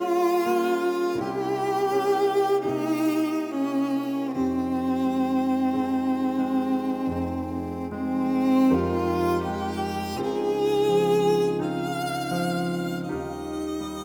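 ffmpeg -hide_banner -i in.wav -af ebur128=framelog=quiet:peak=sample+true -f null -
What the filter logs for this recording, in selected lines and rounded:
Integrated loudness:
  I:         -25.0 LUFS
  Threshold: -35.0 LUFS
Loudness range:
  LRA:         1.6 LU
  Threshold: -44.9 LUFS
  LRA low:   -25.6 LUFS
  LRA high:  -24.0 LUFS
Sample peak:
  Peak:      -10.6 dBFS
True peak:
  Peak:      -10.6 dBFS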